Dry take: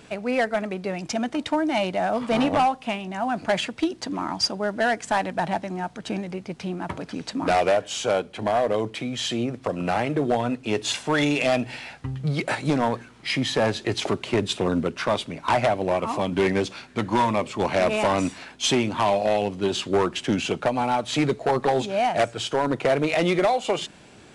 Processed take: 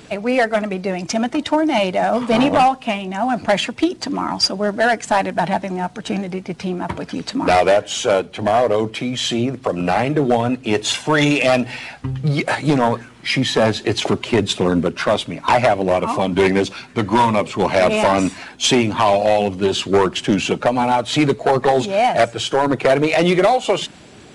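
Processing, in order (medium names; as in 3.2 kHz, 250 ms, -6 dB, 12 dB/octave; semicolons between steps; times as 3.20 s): coarse spectral quantiser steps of 15 dB; trim +7 dB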